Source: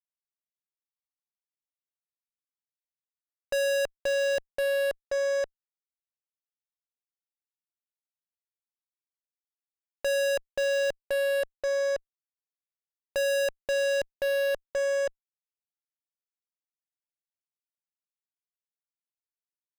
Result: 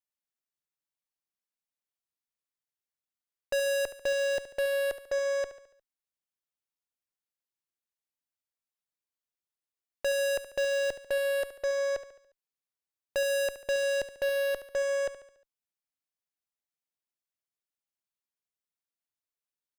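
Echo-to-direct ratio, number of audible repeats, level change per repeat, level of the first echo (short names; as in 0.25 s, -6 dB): -12.0 dB, 4, -6.0 dB, -13.0 dB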